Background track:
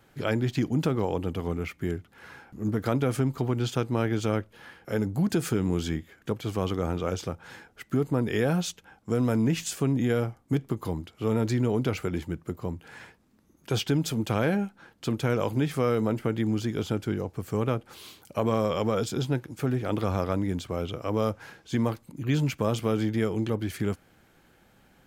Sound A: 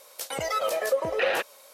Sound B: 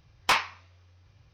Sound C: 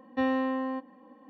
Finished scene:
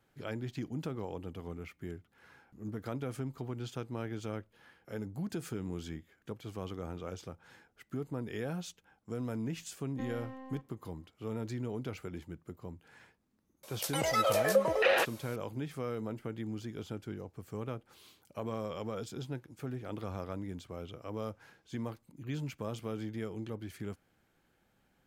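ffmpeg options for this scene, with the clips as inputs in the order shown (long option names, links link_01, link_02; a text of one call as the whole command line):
ffmpeg -i bed.wav -i cue0.wav -i cue1.wav -i cue2.wav -filter_complex "[0:a]volume=-12.5dB[link_01];[3:a]aeval=exprs='if(lt(val(0),0),0.447*val(0),val(0))':channel_layout=same,atrim=end=1.29,asetpts=PTS-STARTPTS,volume=-14.5dB,afade=type=in:duration=0.004:curve=hsin,afade=type=out:start_time=1.286:duration=0.004:curve=hsin,adelay=9810[link_02];[1:a]atrim=end=1.73,asetpts=PTS-STARTPTS,volume=-1.5dB,afade=type=in:duration=0.004:curve=hsin,afade=type=out:start_time=1.726:duration=0.004:curve=hsin,adelay=13630[link_03];[link_01][link_02][link_03]amix=inputs=3:normalize=0" out.wav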